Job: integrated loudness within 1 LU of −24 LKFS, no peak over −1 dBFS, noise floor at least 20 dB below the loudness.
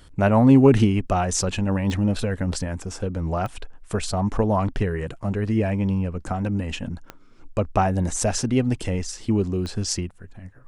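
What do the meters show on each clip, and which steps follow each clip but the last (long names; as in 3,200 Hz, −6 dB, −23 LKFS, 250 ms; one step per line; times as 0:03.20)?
number of clicks 4; integrated loudness −23.0 LKFS; sample peak −3.5 dBFS; target loudness −24.0 LKFS
→ click removal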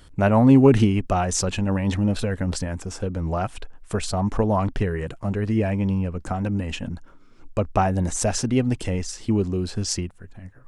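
number of clicks 0; integrated loudness −23.0 LKFS; sample peak −3.5 dBFS; target loudness −24.0 LKFS
→ level −1 dB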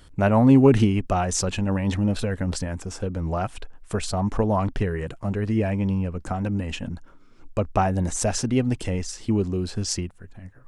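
integrated loudness −24.0 LKFS; sample peak −4.5 dBFS; background noise floor −49 dBFS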